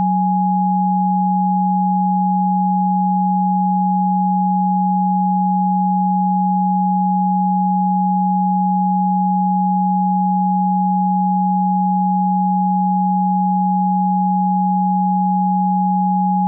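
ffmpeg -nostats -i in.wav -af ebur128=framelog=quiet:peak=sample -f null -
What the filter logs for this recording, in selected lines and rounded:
Integrated loudness:
  I:         -16.6 LUFS
  Threshold: -26.6 LUFS
Loudness range:
  LRA:         0.0 LU
  Threshold: -36.6 LUFS
  LRA low:   -16.6 LUFS
  LRA high:  -16.6 LUFS
Sample peak:
  Peak:       -9.9 dBFS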